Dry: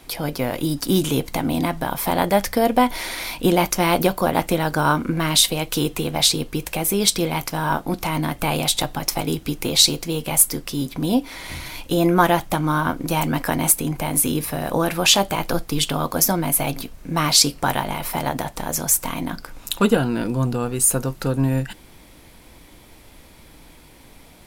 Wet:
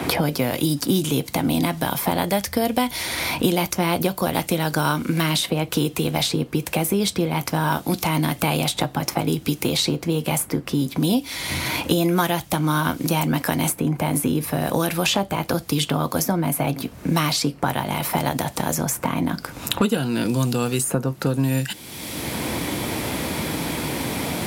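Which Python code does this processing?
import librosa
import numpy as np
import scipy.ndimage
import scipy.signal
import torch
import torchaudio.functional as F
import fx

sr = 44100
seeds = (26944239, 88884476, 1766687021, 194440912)

y = scipy.signal.sosfilt(scipy.signal.butter(4, 72.0, 'highpass', fs=sr, output='sos'), x)
y = fx.low_shelf(y, sr, hz=310.0, db=5.0)
y = fx.band_squash(y, sr, depth_pct=100)
y = y * librosa.db_to_amplitude(-3.0)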